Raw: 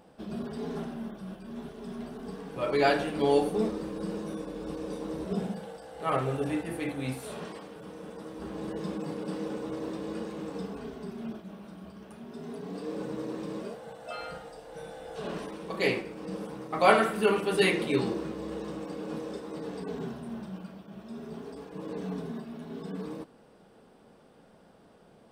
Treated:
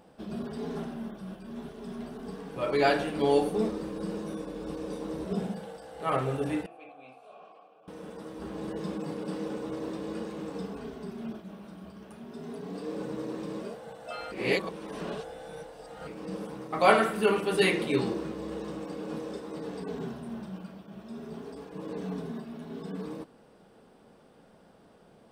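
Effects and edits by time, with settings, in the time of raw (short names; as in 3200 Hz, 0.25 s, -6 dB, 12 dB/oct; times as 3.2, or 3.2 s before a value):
6.66–7.88 vowel filter a
14.32–16.07 reverse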